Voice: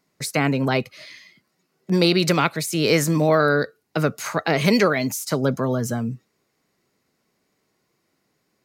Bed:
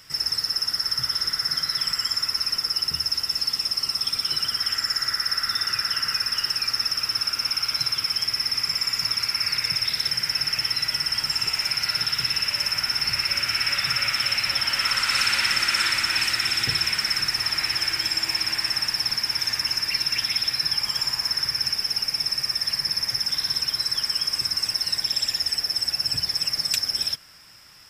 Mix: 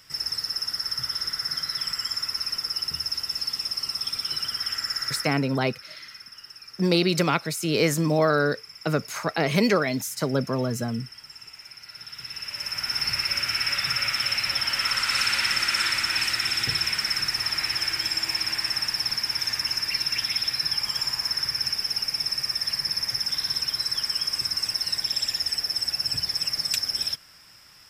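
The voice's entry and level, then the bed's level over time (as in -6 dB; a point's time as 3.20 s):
4.90 s, -3.5 dB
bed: 5.17 s -4 dB
5.46 s -19.5 dB
11.85 s -19.5 dB
12.98 s -2 dB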